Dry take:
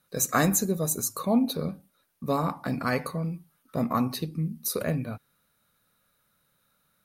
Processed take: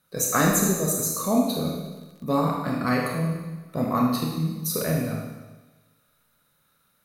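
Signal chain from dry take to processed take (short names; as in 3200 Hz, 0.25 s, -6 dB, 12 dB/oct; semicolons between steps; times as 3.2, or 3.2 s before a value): Schroeder reverb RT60 1.2 s, combs from 25 ms, DRR -1 dB; 1.7–2.57 crackle 25/s -41 dBFS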